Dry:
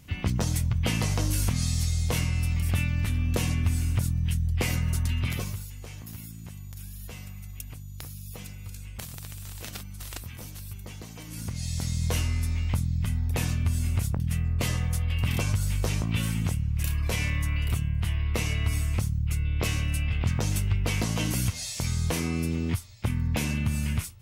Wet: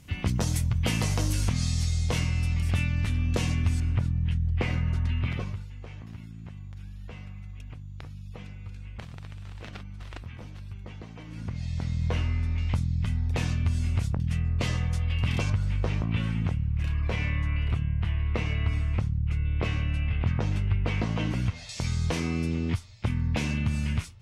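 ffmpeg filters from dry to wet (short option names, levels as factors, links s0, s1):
-af "asetnsamples=n=441:p=0,asendcmd='1.33 lowpass f 6900;3.8 lowpass f 2600;12.58 lowpass f 5300;15.5 lowpass f 2600;21.69 lowpass f 5500',lowpass=12000"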